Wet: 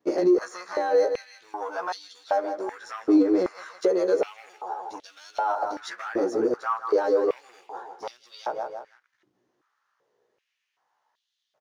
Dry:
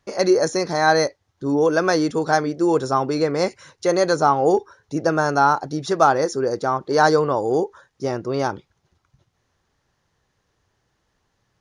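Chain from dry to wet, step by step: short-time reversal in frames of 33 ms; on a send: feedback echo 0.161 s, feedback 37%, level -14.5 dB; on the sum: limiter -13.5 dBFS, peak gain reduction 8.5 dB; compressor 6:1, threshold -30 dBFS, peak gain reduction 12 dB; tilt -2 dB/oct; sample leveller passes 1; stepped high-pass 2.6 Hz 310–3500 Hz; gain -1 dB

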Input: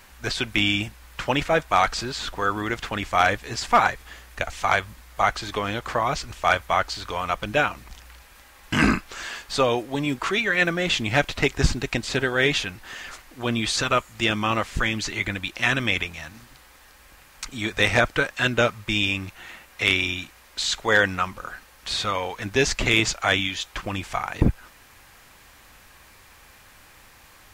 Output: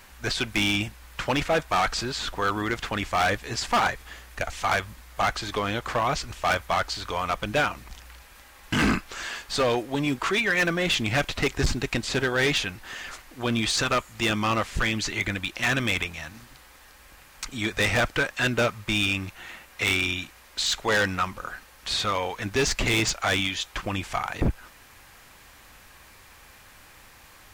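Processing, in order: hard clip -18 dBFS, distortion -9 dB

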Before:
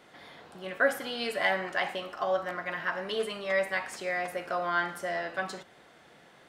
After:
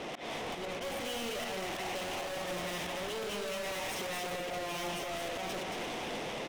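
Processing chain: minimum comb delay 0.35 ms; HPF 88 Hz 12 dB/oct; tilt -2 dB/oct; in parallel at -2.5 dB: vocal rider 0.5 s; on the sum: auto swell 0.34 s; tremolo triangle 0.55 Hz, depth 70%; overdrive pedal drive 34 dB, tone 2500 Hz, clips at -14.5 dBFS; soft clip -38 dBFS, distortion -6 dB; on a send: echo 0.225 s -4.5 dB

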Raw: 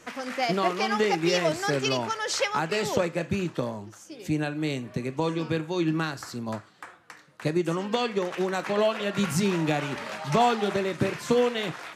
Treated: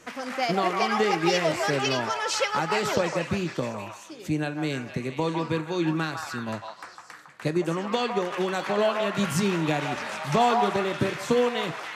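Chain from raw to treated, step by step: delay with a stepping band-pass 0.155 s, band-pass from 960 Hz, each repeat 0.7 oct, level -1 dB

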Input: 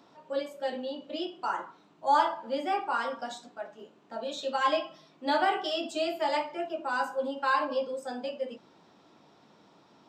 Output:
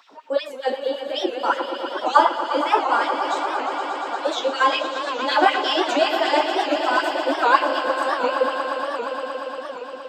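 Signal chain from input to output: LFO high-pass sine 5.3 Hz 290–2800 Hz; swelling echo 0.117 s, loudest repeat 5, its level -11.5 dB; record warp 78 rpm, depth 160 cents; gain +7 dB

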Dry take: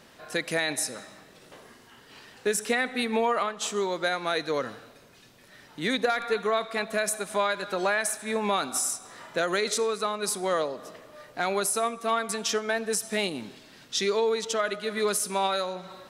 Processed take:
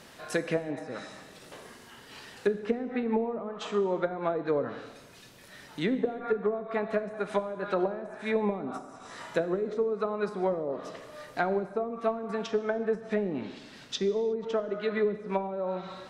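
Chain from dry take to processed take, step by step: treble ducked by the level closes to 340 Hz, closed at -22 dBFS; high shelf 9800 Hz +4.5 dB, from 12.96 s -7.5 dB; non-linear reverb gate 0.39 s falling, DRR 11 dB; gain +2 dB

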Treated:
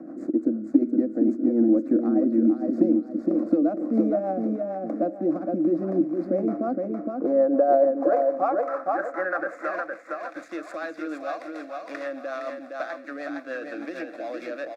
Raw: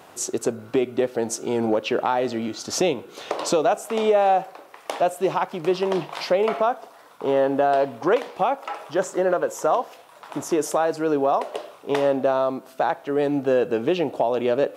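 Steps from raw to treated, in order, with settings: median filter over 15 samples; bell 320 Hz +13 dB 0.23 oct; in parallel at -2 dB: limiter -15.5 dBFS, peak gain reduction 11 dB; on the sum: band-pass sweep 260 Hz -> 3100 Hz, 6.7–10.14; on a send: feedback echo 0.463 s, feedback 28%, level -5 dB; on the sum: rotary speaker horn 6.7 Hz; fixed phaser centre 610 Hz, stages 8; three-band squash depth 40%; gain +5 dB

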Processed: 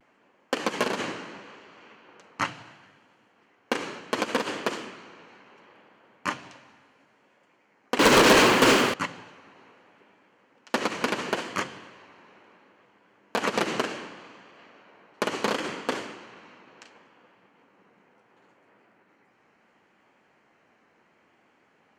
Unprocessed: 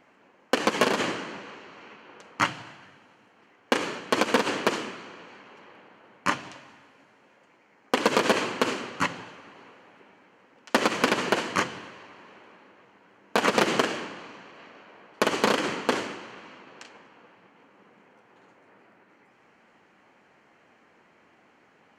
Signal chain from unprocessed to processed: vibrato 0.71 Hz 48 cents; 7.99–8.94 sample leveller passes 5; gain -4 dB

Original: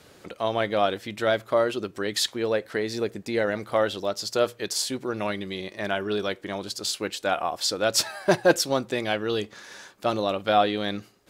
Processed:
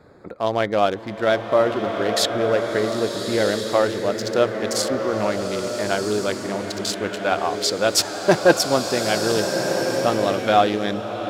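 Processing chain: Wiener smoothing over 15 samples; bloom reverb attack 1.38 s, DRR 3.5 dB; gain +4.5 dB

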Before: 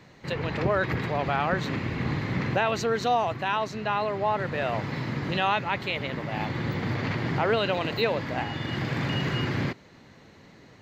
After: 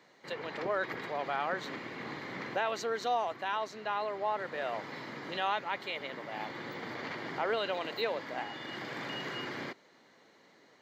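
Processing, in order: HPF 350 Hz 12 dB/oct; notch 2600 Hz, Q 11; gain -6.5 dB

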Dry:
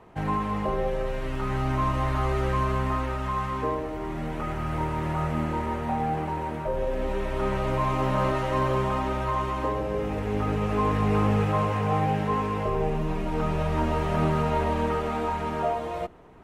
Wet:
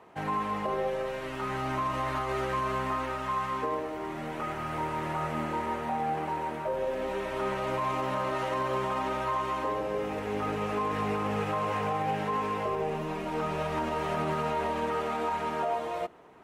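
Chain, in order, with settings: HPF 390 Hz 6 dB/oct; limiter -21.5 dBFS, peak gain reduction 5.5 dB

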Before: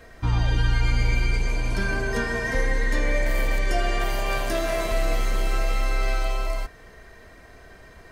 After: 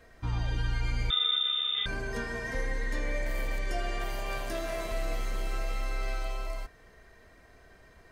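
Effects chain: 1.1–1.86 inverted band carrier 3600 Hz; gain -9 dB

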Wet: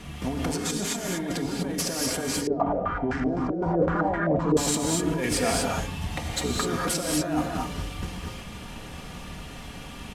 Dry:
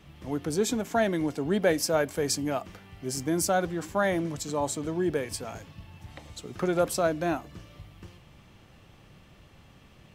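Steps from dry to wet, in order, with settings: CVSD 64 kbps; notch 490 Hz, Q 13; comb 4.2 ms, depth 42%; negative-ratio compressor -36 dBFS, ratio -1; soft clip -19.5 dBFS, distortion -29 dB; non-linear reverb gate 0.27 s rising, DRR -1 dB; 2.47–4.57 stepped low-pass 7.8 Hz 430–1600 Hz; gain +5.5 dB

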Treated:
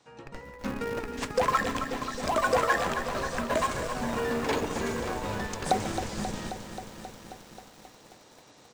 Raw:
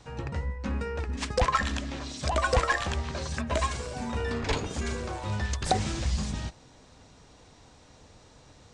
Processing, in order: HPF 220 Hz 12 dB/oct; on a send: feedback echo 0.141 s, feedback 36%, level -15.5 dB; on the sum: AGC gain up to 9.5 dB; dynamic EQ 4200 Hz, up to -6 dB, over -37 dBFS, Q 0.71; in parallel at -4.5 dB: Schmitt trigger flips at -22.5 dBFS; on the sum: lo-fi delay 0.267 s, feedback 80%, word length 7-bit, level -9.5 dB; gain -8 dB

